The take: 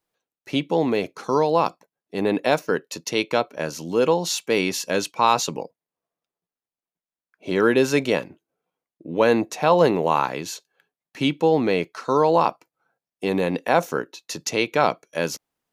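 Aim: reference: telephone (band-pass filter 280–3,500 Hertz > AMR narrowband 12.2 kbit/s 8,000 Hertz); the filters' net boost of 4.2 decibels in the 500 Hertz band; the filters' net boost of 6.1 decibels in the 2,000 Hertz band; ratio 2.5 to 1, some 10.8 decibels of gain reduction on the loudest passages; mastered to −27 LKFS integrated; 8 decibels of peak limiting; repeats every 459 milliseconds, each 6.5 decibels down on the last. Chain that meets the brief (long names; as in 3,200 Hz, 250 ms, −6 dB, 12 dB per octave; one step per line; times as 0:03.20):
parametric band 500 Hz +5 dB
parametric band 2,000 Hz +8.5 dB
downward compressor 2.5 to 1, threshold −25 dBFS
brickwall limiter −16.5 dBFS
band-pass filter 280–3,500 Hz
repeating echo 459 ms, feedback 47%, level −6.5 dB
level +3.5 dB
AMR narrowband 12.2 kbit/s 8,000 Hz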